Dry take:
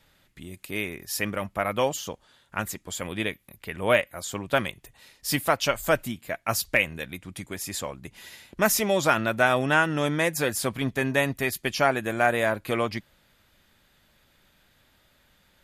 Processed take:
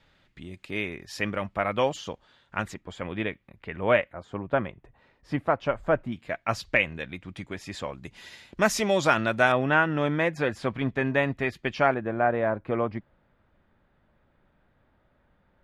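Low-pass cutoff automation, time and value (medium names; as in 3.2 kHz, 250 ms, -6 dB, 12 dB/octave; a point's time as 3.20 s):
4.1 kHz
from 2.74 s 2.3 kHz
from 4.13 s 1.3 kHz
from 6.12 s 3.5 kHz
from 7.93 s 6 kHz
from 9.52 s 2.5 kHz
from 11.94 s 1.2 kHz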